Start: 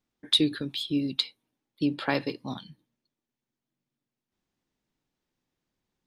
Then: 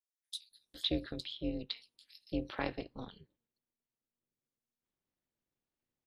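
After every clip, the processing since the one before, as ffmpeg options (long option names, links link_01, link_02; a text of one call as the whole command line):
ffmpeg -i in.wav -filter_complex "[0:a]tremolo=f=240:d=0.947,acrossover=split=4800[link_01][link_02];[link_01]adelay=510[link_03];[link_03][link_02]amix=inputs=2:normalize=0,volume=-5.5dB" out.wav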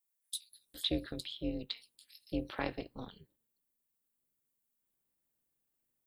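ffmpeg -i in.wav -af "aexciter=amount=4.2:drive=3.3:freq=7600" out.wav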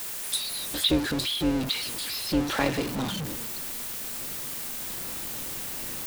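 ffmpeg -i in.wav -af "aeval=exprs='val(0)+0.5*0.0188*sgn(val(0))':channel_layout=same,highshelf=frequency=12000:gain=-3,volume=8.5dB" out.wav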